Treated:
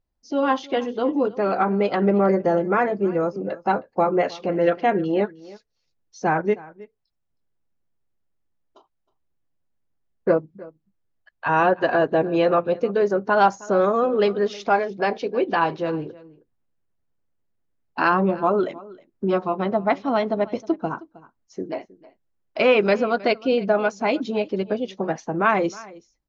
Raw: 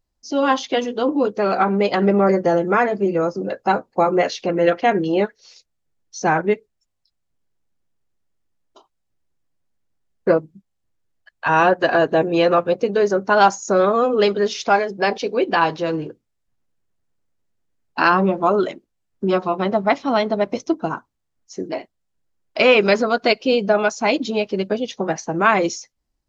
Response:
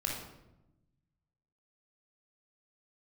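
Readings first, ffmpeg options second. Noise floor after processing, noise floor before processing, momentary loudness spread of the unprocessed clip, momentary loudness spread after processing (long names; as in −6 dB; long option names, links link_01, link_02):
−74 dBFS, −74 dBFS, 10 LU, 9 LU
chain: -af "aemphasis=mode=reproduction:type=75kf,aecho=1:1:315:0.0944,volume=-2.5dB"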